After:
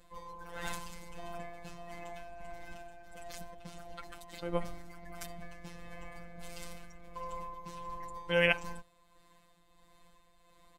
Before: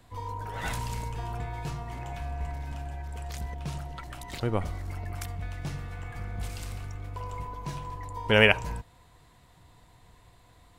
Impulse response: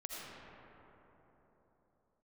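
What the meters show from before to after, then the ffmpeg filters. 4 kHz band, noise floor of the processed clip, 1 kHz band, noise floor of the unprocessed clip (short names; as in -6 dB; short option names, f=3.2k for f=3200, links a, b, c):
-9.0 dB, -65 dBFS, -7.0 dB, -58 dBFS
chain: -af "aecho=1:1:3.9:0.75,afftfilt=real='hypot(re,im)*cos(PI*b)':imag='0':win_size=1024:overlap=0.75,tremolo=f=1.5:d=0.45,volume=-2.5dB"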